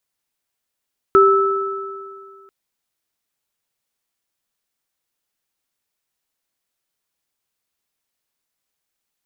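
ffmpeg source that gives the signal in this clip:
-f lavfi -i "aevalsrc='0.355*pow(10,-3*t/2.06)*sin(2*PI*392*t)+0.335*pow(10,-3*t/2.11)*sin(2*PI*1310*t)':d=1.34:s=44100"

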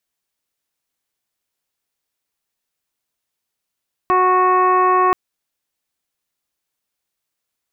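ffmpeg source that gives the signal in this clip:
-f lavfi -i "aevalsrc='0.126*sin(2*PI*368*t)+0.1*sin(2*PI*736*t)+0.224*sin(2*PI*1104*t)+0.0224*sin(2*PI*1472*t)+0.0398*sin(2*PI*1840*t)+0.0141*sin(2*PI*2208*t)+0.0178*sin(2*PI*2576*t)':d=1.03:s=44100"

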